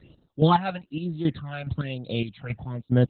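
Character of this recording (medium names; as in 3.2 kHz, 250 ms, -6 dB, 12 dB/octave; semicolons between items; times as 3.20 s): chopped level 2.4 Hz, depth 65%, duty 35%; phasing stages 12, 1.1 Hz, lowest notch 320–2400 Hz; Opus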